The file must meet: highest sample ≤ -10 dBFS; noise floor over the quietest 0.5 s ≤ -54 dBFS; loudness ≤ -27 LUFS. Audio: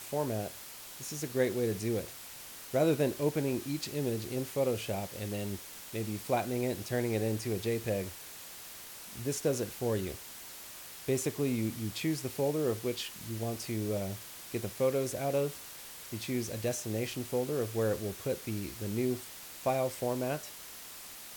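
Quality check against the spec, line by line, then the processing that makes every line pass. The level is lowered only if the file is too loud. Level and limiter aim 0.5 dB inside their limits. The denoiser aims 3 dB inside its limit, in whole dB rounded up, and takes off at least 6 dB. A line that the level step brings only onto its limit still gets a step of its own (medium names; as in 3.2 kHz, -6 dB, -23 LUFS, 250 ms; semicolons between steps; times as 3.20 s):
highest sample -16.0 dBFS: pass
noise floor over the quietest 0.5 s -47 dBFS: fail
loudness -34.5 LUFS: pass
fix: noise reduction 10 dB, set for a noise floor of -47 dBFS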